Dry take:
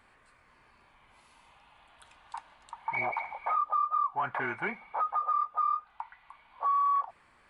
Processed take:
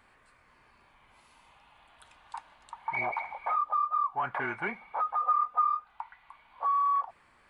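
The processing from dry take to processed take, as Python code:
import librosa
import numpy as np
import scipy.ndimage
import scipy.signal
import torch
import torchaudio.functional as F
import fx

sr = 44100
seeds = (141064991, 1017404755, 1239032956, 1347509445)

y = fx.comb(x, sr, ms=4.0, depth=0.68, at=(5.19, 5.68))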